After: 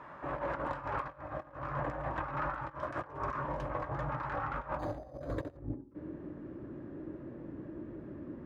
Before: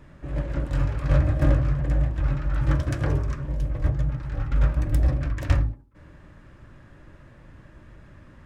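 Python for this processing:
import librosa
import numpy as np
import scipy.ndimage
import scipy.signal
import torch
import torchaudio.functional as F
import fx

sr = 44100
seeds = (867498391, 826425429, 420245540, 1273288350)

y = fx.filter_sweep_bandpass(x, sr, from_hz=1000.0, to_hz=330.0, start_s=4.62, end_s=5.81, q=2.6)
y = fx.over_compress(y, sr, threshold_db=-48.0, ratio=-0.5)
y = fx.resample_linear(y, sr, factor=8, at=(4.79, 5.57))
y = F.gain(torch.from_numpy(y), 10.5).numpy()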